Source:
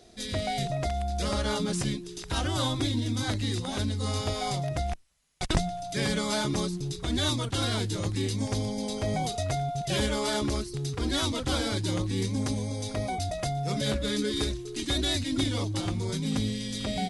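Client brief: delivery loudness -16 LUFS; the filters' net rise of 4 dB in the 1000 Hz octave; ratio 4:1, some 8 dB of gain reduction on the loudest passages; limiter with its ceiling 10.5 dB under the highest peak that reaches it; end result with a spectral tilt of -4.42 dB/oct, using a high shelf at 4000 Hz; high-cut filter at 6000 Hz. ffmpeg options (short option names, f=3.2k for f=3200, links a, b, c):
-af "lowpass=6k,equalizer=f=1k:t=o:g=5.5,highshelf=f=4k:g=8.5,acompressor=threshold=-28dB:ratio=4,volume=17dB,alimiter=limit=-6.5dB:level=0:latency=1"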